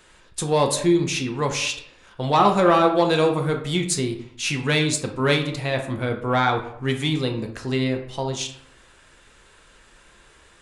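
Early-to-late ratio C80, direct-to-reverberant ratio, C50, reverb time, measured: 12.5 dB, 3.0 dB, 8.5 dB, 0.70 s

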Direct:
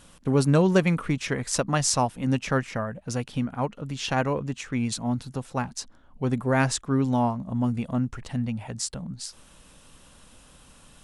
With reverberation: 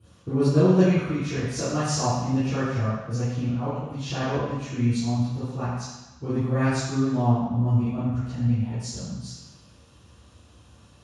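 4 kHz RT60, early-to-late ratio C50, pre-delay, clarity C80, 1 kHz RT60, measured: 1.1 s, -3.0 dB, 3 ms, 0.5 dB, 1.1 s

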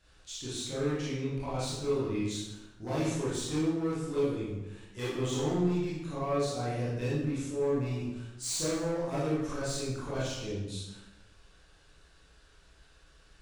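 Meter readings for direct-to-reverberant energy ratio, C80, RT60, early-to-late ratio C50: -9.0 dB, 2.5 dB, 1.1 s, -1.0 dB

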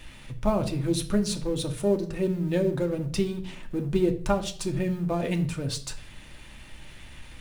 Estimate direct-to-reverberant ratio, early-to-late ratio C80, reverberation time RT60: 4.0 dB, 18.0 dB, 0.50 s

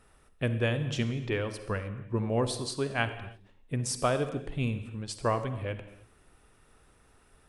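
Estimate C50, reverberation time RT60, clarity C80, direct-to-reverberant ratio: 10.5 dB, no single decay rate, 12.5 dB, 10.0 dB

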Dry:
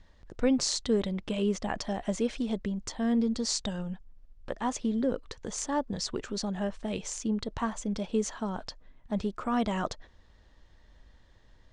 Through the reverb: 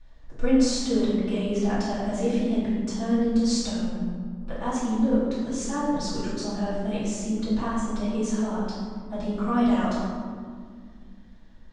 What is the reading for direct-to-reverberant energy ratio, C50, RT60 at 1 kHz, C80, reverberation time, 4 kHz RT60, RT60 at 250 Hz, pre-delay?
-11.0 dB, -1.0 dB, 1.9 s, 1.5 dB, 2.0 s, 0.95 s, 3.1 s, 3 ms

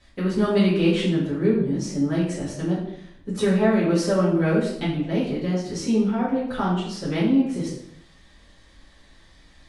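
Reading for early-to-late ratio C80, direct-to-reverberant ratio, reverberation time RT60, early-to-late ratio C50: 7.0 dB, -10.0 dB, 0.70 s, 3.0 dB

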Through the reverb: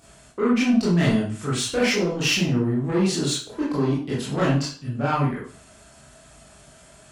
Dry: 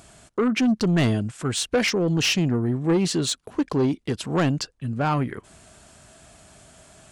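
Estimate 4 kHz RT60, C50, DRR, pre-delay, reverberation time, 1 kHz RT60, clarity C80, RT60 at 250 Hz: 0.40 s, 2.5 dB, -8.0 dB, 18 ms, 0.45 s, 0.45 s, 8.5 dB, 0.45 s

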